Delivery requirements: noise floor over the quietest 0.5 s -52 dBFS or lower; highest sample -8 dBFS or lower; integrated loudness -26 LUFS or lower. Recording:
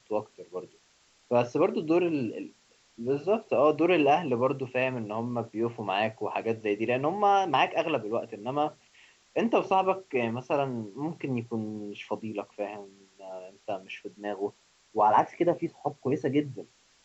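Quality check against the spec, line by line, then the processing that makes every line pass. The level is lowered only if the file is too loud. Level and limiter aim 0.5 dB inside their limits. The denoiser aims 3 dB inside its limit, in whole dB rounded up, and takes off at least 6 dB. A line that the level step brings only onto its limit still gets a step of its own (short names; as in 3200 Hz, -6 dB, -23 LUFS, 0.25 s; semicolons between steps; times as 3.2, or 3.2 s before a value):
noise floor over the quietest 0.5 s -64 dBFS: OK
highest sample -11.5 dBFS: OK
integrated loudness -28.5 LUFS: OK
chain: none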